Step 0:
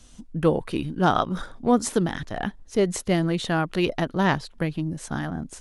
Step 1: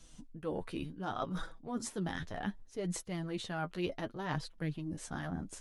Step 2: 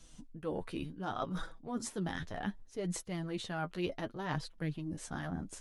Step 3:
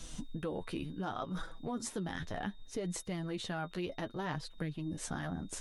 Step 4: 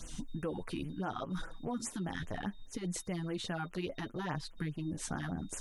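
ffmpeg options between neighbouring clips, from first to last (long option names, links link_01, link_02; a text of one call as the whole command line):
ffmpeg -i in.wav -af "areverse,acompressor=threshold=-27dB:ratio=12,areverse,flanger=delay=6:depth=5.6:regen=27:speed=0.67:shape=sinusoidal,volume=-3dB" out.wav
ffmpeg -i in.wav -af anull out.wav
ffmpeg -i in.wav -af "acompressor=threshold=-47dB:ratio=6,aeval=exprs='val(0)+0.000178*sin(2*PI*3700*n/s)':channel_layout=same,volume=11dB" out.wav
ffmpeg -i in.wav -af "afftfilt=real='re*(1-between(b*sr/1024,460*pow(4700/460,0.5+0.5*sin(2*PI*4.9*pts/sr))/1.41,460*pow(4700/460,0.5+0.5*sin(2*PI*4.9*pts/sr))*1.41))':imag='im*(1-between(b*sr/1024,460*pow(4700/460,0.5+0.5*sin(2*PI*4.9*pts/sr))/1.41,460*pow(4700/460,0.5+0.5*sin(2*PI*4.9*pts/sr))*1.41))':win_size=1024:overlap=0.75,volume=1dB" out.wav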